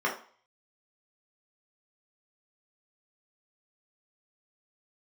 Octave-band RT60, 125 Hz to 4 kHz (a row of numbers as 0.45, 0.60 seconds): 0.35, 0.35, 0.45, 0.45, 0.40, 0.45 seconds